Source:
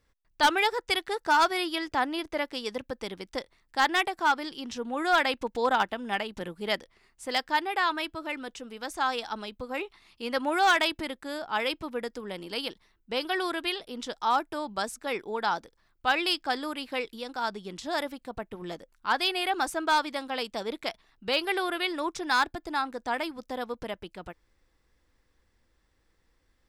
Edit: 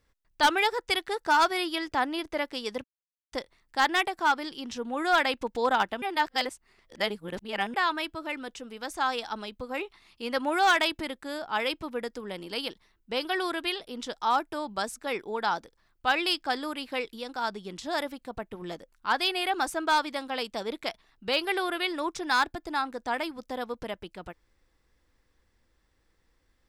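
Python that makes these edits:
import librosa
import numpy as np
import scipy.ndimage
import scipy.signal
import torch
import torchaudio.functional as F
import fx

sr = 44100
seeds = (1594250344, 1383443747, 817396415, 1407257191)

y = fx.edit(x, sr, fx.silence(start_s=2.84, length_s=0.48),
    fx.reverse_span(start_s=6.02, length_s=1.72), tone=tone)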